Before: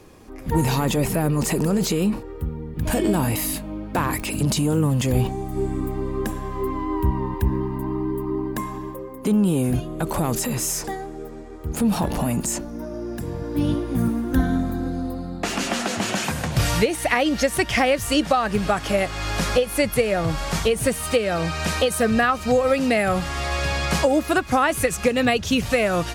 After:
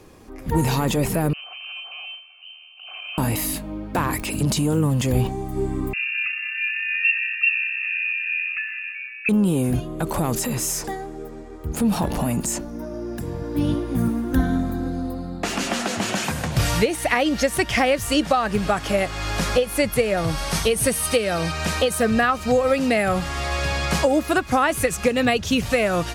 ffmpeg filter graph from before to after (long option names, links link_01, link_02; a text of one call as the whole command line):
ffmpeg -i in.wav -filter_complex "[0:a]asettb=1/sr,asplit=3[link_01][link_02][link_03];[link_01]atrim=end=1.334[link_04];[link_02]atrim=start=1.33:end=3.18,asetpts=PTS-STARTPTS,afade=type=in:duration=0.004:curve=qsin,afade=type=out:start_time=1.846:duration=0.004:curve=qsin,aeval=exprs='abs(val(0))':channel_layout=same,lowpass=frequency=2600:width_type=q:width=0.5098,lowpass=frequency=2600:width_type=q:width=0.6013,lowpass=frequency=2600:width_type=q:width=0.9,lowpass=frequency=2600:width_type=q:width=2.563,afreqshift=-3100,asplit=3[link_05][link_06][link_07];[link_05]bandpass=frequency=730:width_type=q:width=8,volume=0dB[link_08];[link_06]bandpass=frequency=1090:width_type=q:width=8,volume=-6dB[link_09];[link_07]bandpass=frequency=2440:width_type=q:width=8,volume=-9dB[link_10];[link_08][link_09][link_10]amix=inputs=3:normalize=0[link_11];[link_03]atrim=start=3.176[link_12];[link_04][link_11]acrossfade=duration=0.004:curve1=hsin:curve2=qsin[link_13];[link_13][link_12]acrossfade=duration=0.004:curve1=qsin:curve2=hsin,asettb=1/sr,asplit=3[link_14][link_15][link_16];[link_14]atrim=end=5.934[link_17];[link_15]atrim=start=5.93:end=9.29,asetpts=PTS-STARTPTS,afade=type=in:duration=0.004:curve=qsin,afade=type=out:start_time=3.356:duration=0.004:curve=qsin,asuperstop=centerf=2100:order=20:qfactor=1.6,lowpass=frequency=2400:width_type=q:width=0.5098,lowpass=frequency=2400:width_type=q:width=0.6013,lowpass=frequency=2400:width_type=q:width=0.9,lowpass=frequency=2400:width_type=q:width=2.563,afreqshift=-2800[link_18];[link_16]atrim=start=9.286[link_19];[link_17][link_18]acrossfade=duration=0.004:curve1=hsin:curve2=qsin[link_20];[link_20][link_19]acrossfade=duration=0.004:curve1=qsin:curve2=hsin,asettb=1/sr,asplit=3[link_21][link_22][link_23];[link_21]atrim=end=20.174[link_24];[link_22]atrim=start=20.17:end=21.52,asetpts=PTS-STARTPTS,afade=type=in:duration=0.004:curve=qsin,afade=type=out:start_time=1.346:duration=0.004:curve=qsin,lowpass=12000,aemphasis=mode=production:type=cd,bandreject=frequency=7200:width=6[link_25];[link_23]atrim=start=21.516[link_26];[link_24][link_25]acrossfade=duration=0.004:curve1=hsin:curve2=qsin[link_27];[link_27][link_26]acrossfade=duration=0.004:curve1=qsin:curve2=hsin" out.wav